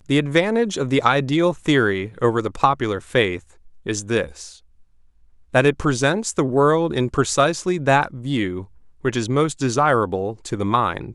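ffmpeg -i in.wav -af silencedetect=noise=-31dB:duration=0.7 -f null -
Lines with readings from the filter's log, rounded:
silence_start: 4.49
silence_end: 5.54 | silence_duration: 1.05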